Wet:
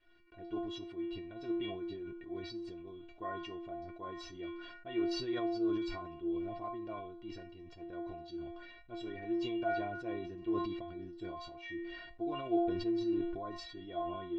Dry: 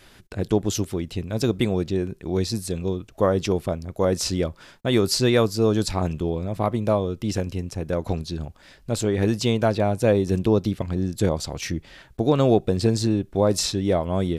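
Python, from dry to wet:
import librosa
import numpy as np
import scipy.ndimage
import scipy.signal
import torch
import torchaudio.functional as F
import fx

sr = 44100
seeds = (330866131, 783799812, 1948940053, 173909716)

y = scipy.signal.sosfilt(scipy.signal.butter(4, 3400.0, 'lowpass', fs=sr, output='sos'), x)
y = fx.stiff_resonator(y, sr, f0_hz=340.0, decay_s=0.46, stiffness=0.008)
y = fx.sustainer(y, sr, db_per_s=39.0)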